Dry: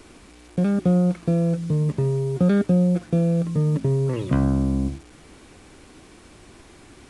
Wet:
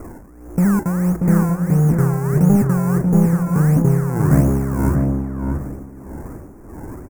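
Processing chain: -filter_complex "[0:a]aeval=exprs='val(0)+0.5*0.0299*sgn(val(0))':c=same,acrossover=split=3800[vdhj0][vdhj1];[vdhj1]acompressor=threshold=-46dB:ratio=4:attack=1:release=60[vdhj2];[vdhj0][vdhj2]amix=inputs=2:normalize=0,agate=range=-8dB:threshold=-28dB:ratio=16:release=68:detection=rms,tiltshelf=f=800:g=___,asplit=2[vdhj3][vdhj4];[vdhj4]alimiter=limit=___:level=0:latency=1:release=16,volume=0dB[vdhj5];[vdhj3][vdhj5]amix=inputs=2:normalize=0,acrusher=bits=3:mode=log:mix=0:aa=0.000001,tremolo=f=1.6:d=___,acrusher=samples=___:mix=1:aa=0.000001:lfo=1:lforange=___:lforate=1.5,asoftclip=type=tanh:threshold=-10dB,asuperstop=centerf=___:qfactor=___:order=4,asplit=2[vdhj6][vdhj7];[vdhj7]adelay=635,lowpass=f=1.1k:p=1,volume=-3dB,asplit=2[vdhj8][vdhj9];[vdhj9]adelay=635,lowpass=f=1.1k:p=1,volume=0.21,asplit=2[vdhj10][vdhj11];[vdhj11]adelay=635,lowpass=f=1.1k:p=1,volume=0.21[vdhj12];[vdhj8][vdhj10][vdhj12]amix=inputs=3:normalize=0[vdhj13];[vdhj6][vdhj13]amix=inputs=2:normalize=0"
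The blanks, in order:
7, -15.5dB, 0.73, 25, 25, 3500, 0.56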